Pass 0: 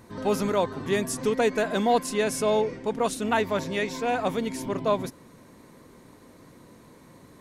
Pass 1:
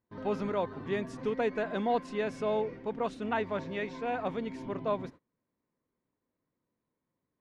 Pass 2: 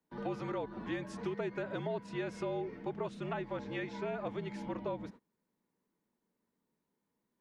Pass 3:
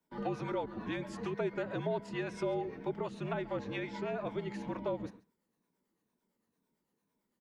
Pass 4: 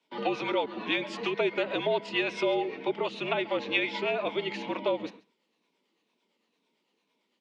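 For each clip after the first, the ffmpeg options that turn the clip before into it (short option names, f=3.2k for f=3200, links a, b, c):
-af "lowpass=2.9k,agate=range=-27dB:threshold=-41dB:ratio=16:detection=peak,volume=-7dB"
-filter_complex "[0:a]afreqshift=-60,lowshelf=f=140:t=q:w=1.5:g=-10,acrossover=split=140|400[a][b][c];[a]acompressor=threshold=-50dB:ratio=4[d];[b]acompressor=threshold=-45dB:ratio=4[e];[c]acompressor=threshold=-40dB:ratio=4[f];[d][e][f]amix=inputs=3:normalize=0,volume=1dB"
-filter_complex "[0:a]afftfilt=real='re*pow(10,6/40*sin(2*PI*(1.6*log(max(b,1)*sr/1024/100)/log(2)-(-2.1)*(pts-256)/sr)))':imag='im*pow(10,6/40*sin(2*PI*(1.6*log(max(b,1)*sr/1024/100)/log(2)-(-2.1)*(pts-256)/sr)))':win_size=1024:overlap=0.75,acrossover=split=510[a][b];[a]aeval=exprs='val(0)*(1-0.5/2+0.5/2*cos(2*PI*8.9*n/s))':c=same[c];[b]aeval=exprs='val(0)*(1-0.5/2-0.5/2*cos(2*PI*8.9*n/s))':c=same[d];[c][d]amix=inputs=2:normalize=0,aecho=1:1:137:0.0841,volume=3.5dB"
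-filter_complex "[0:a]aexciter=amount=6.5:drive=8.9:freq=2.5k,highpass=130,lowpass=3.8k,acrossover=split=250 2700:gain=0.158 1 0.126[a][b][c];[a][b][c]amix=inputs=3:normalize=0,volume=8dB"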